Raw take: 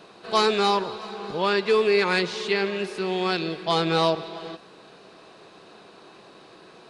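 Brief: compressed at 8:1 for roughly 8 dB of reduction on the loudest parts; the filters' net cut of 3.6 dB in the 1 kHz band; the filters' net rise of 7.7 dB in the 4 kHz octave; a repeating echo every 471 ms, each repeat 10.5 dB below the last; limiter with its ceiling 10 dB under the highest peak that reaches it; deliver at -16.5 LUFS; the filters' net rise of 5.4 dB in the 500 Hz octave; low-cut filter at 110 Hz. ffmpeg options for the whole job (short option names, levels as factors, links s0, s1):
-af "highpass=110,equalizer=f=500:t=o:g=8.5,equalizer=f=1000:t=o:g=-8,equalizer=f=4000:t=o:g=9,acompressor=threshold=0.112:ratio=8,alimiter=limit=0.133:level=0:latency=1,aecho=1:1:471|942|1413:0.299|0.0896|0.0269,volume=3.35"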